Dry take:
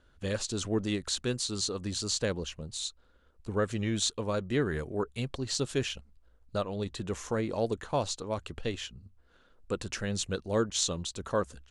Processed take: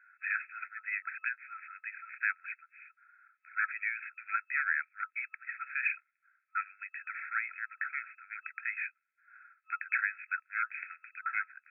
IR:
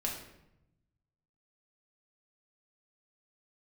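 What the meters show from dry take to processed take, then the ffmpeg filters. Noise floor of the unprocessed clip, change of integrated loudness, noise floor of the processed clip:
-64 dBFS, -3.5 dB, -80 dBFS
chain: -af "aeval=exprs='0.316*sin(PI/2*3.16*val(0)/0.316)':c=same,afftfilt=real='re*between(b*sr/4096,1300,2600)':imag='im*between(b*sr/4096,1300,2600)':win_size=4096:overlap=0.75,volume=-2dB"

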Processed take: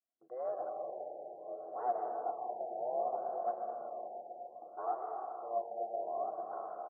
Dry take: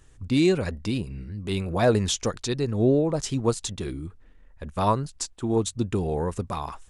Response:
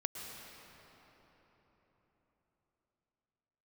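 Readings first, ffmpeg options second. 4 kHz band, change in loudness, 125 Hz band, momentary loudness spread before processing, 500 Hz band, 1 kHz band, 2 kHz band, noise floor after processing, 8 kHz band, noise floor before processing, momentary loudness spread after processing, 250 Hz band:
under -40 dB, -14.0 dB, under -40 dB, 13 LU, -11.5 dB, -4.5 dB, under -25 dB, -55 dBFS, under -40 dB, -53 dBFS, 10 LU, -31.5 dB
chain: -filter_complex "[0:a]aeval=exprs='0.178*(abs(mod(val(0)/0.178+3,4)-2)-1)':c=same,aeval=exprs='val(0)*sin(2*PI*240*n/s)':c=same,highpass=390,highshelf=f=2.4k:g=-11,bandreject=f=1.2k:w=12,aecho=1:1:211:0.251,agate=range=-33dB:threshold=-49dB:ratio=3:detection=peak,asplit=3[a][b][c];[a]bandpass=f=730:t=q:w=8,volume=0dB[d];[b]bandpass=f=1.09k:t=q:w=8,volume=-6dB[e];[c]bandpass=f=2.44k:t=q:w=8,volume=-9dB[f];[d][e][f]amix=inputs=3:normalize=0[g];[1:a]atrim=start_sample=2205[h];[g][h]afir=irnorm=-1:irlink=0,afftfilt=real='re*lt(b*sr/1024,890*pow(2100/890,0.5+0.5*sin(2*PI*0.64*pts/sr)))':imag='im*lt(b*sr/1024,890*pow(2100/890,0.5+0.5*sin(2*PI*0.64*pts/sr)))':win_size=1024:overlap=0.75,volume=1dB"

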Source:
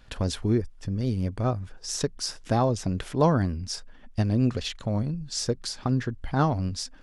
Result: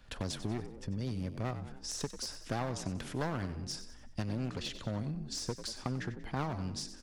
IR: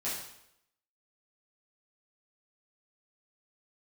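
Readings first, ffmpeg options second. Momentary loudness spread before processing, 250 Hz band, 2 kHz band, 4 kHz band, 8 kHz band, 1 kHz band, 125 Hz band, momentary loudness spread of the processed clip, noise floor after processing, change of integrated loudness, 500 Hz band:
9 LU, -11.5 dB, -5.5 dB, -7.5 dB, -7.5 dB, -11.5 dB, -11.5 dB, 4 LU, -51 dBFS, -11.0 dB, -12.5 dB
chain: -filter_complex "[0:a]aeval=exprs='clip(val(0),-1,0.0501)':c=same,asplit=5[a][b][c][d][e];[b]adelay=93,afreqshift=49,volume=-14dB[f];[c]adelay=186,afreqshift=98,volume=-21.5dB[g];[d]adelay=279,afreqshift=147,volume=-29.1dB[h];[e]adelay=372,afreqshift=196,volume=-36.6dB[i];[a][f][g][h][i]amix=inputs=5:normalize=0,acrossover=split=110|890[j][k][l];[j]acompressor=threshold=-40dB:ratio=4[m];[k]acompressor=threshold=-31dB:ratio=4[n];[l]acompressor=threshold=-33dB:ratio=4[o];[m][n][o]amix=inputs=3:normalize=0,volume=-4.5dB"

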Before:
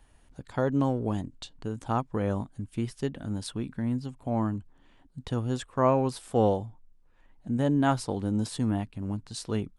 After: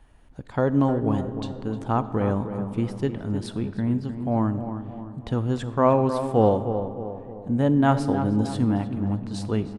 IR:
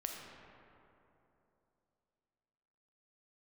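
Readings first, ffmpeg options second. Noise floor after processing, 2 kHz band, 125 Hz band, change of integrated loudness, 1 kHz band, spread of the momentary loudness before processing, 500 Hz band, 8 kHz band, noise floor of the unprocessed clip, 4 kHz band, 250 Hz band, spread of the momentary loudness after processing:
-44 dBFS, +3.5 dB, +5.5 dB, +5.0 dB, +5.0 dB, 12 LU, +5.5 dB, n/a, -60 dBFS, 0.0 dB, +5.5 dB, 11 LU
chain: -filter_complex "[0:a]highshelf=f=4.4k:g=-12,asplit=2[a][b];[b]adelay=308,lowpass=f=1.8k:p=1,volume=-9dB,asplit=2[c][d];[d]adelay=308,lowpass=f=1.8k:p=1,volume=0.48,asplit=2[e][f];[f]adelay=308,lowpass=f=1.8k:p=1,volume=0.48,asplit=2[g][h];[h]adelay=308,lowpass=f=1.8k:p=1,volume=0.48,asplit=2[i][j];[j]adelay=308,lowpass=f=1.8k:p=1,volume=0.48[k];[a][c][e][g][i][k]amix=inputs=6:normalize=0,asplit=2[l][m];[1:a]atrim=start_sample=2205,highshelf=f=8.9k:g=10[n];[m][n]afir=irnorm=-1:irlink=0,volume=-8dB[o];[l][o]amix=inputs=2:normalize=0,volume=2.5dB"

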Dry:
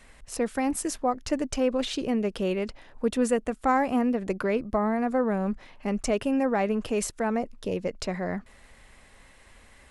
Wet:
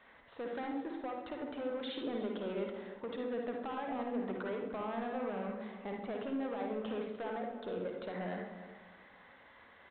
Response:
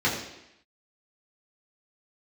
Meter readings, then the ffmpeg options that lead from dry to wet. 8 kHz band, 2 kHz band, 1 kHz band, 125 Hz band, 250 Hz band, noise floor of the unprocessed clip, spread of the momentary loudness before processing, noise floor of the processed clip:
under -40 dB, -11.0 dB, -12.0 dB, -13.0 dB, -13.0 dB, -54 dBFS, 7 LU, -60 dBFS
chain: -filter_complex "[0:a]highpass=f=860:p=1,equalizer=f=2.6k:w=1.6:g=-11.5,alimiter=level_in=1dB:limit=-24dB:level=0:latency=1:release=197,volume=-1dB,acompressor=threshold=-37dB:ratio=3,aresample=8000,asoftclip=type=tanh:threshold=-37.5dB,aresample=44100,asplit=2[a][b];[b]adelay=300,lowpass=f=2k:p=1,volume=-11.5dB,asplit=2[c][d];[d]adelay=300,lowpass=f=2k:p=1,volume=0.3,asplit=2[e][f];[f]adelay=300,lowpass=f=2k:p=1,volume=0.3[g];[a][c][e][g]amix=inputs=4:normalize=0,asplit=2[h][i];[1:a]atrim=start_sample=2205,adelay=51[j];[i][j]afir=irnorm=-1:irlink=0,volume=-15dB[k];[h][k]amix=inputs=2:normalize=0,volume=1.5dB"

